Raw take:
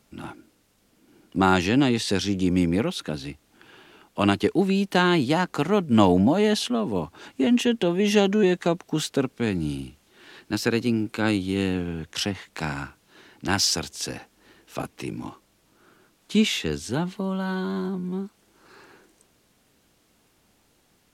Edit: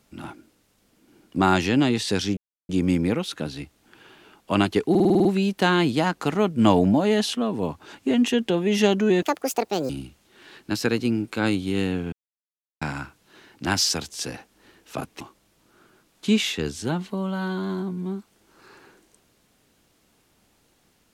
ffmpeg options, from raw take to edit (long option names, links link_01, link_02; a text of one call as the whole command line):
ffmpeg -i in.wav -filter_complex "[0:a]asplit=14[link_01][link_02][link_03][link_04][link_05][link_06][link_07][link_08][link_09][link_10][link_11][link_12][link_13][link_14];[link_01]atrim=end=2.37,asetpts=PTS-STARTPTS,afade=type=out:start_time=2.366:duration=0.004:curve=hsin,apad=pad_dur=0.32[link_15];[link_02]atrim=start=2.37:end=4.632,asetpts=PTS-STARTPTS,afade=type=in:duration=0.004:curve=hsin[link_16];[link_03]atrim=start=4.578:end=4.632[link_17];[link_04]atrim=start=4.578:end=4.632[link_18];[link_05]atrim=start=4.578:end=4.632[link_19];[link_06]atrim=start=4.578:end=4.632[link_20];[link_07]atrim=start=4.578:end=4.632[link_21];[link_08]atrim=start=4.578:end=4.632[link_22];[link_09]atrim=start=4.578:end=8.554[link_23];[link_10]atrim=start=8.55:end=9.71,asetpts=PTS-STARTPTS,asetrate=75852,aresample=44100[link_24];[link_11]atrim=start=9.706:end=11.94,asetpts=PTS-STARTPTS,afade=type=out:start_time=2.23:duration=0.004:curve=hsin[link_25];[link_12]atrim=start=11.94:end=12.63,asetpts=PTS-STARTPTS,volume=0[link_26];[link_13]atrim=start=12.63:end=15.022,asetpts=PTS-STARTPTS,afade=type=in:duration=0.004:curve=hsin[link_27];[link_14]atrim=start=15.268[link_28];[link_15][link_16]concat=n=2:v=0:a=1[link_29];[link_29][link_17]acrossfade=duration=0.004:curve1=hsin:curve2=hsin[link_30];[link_30][link_18]acrossfade=duration=0.004:curve1=hsin:curve2=hsin[link_31];[link_31][link_19]acrossfade=duration=0.004:curve1=hsin:curve2=hsin[link_32];[link_32][link_20]acrossfade=duration=0.004:curve1=hsin:curve2=hsin[link_33];[link_33][link_21]acrossfade=duration=0.004:curve1=hsin:curve2=hsin[link_34];[link_34][link_22]acrossfade=duration=0.004:curve1=hsin:curve2=hsin[link_35];[link_35][link_23]acrossfade=duration=0.004:curve1=hsin:curve2=hsin[link_36];[link_36][link_24]acrossfade=duration=0.004:curve1=hsin:curve2=hsin[link_37];[link_25][link_26][link_27]concat=n=3:v=0:a=1[link_38];[link_37][link_38]acrossfade=duration=0.004:curve1=hsin:curve2=hsin[link_39];[link_39][link_28]acrossfade=duration=0.004:curve1=hsin:curve2=hsin" out.wav